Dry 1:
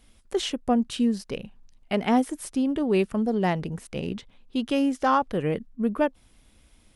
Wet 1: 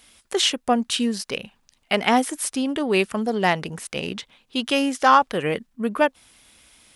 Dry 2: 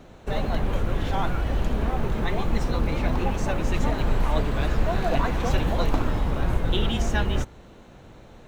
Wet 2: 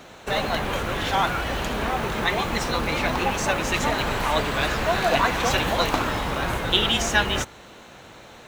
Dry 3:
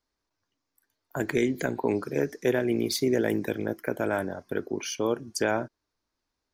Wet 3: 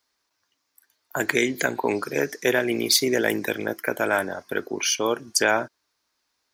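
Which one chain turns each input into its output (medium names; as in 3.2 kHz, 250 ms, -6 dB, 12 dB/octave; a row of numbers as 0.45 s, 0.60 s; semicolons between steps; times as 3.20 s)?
high-pass 93 Hz 6 dB/octave; tilt shelf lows -6.5 dB, about 670 Hz; trim +5 dB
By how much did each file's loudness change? +3.5 LU, +3.5 LU, +4.5 LU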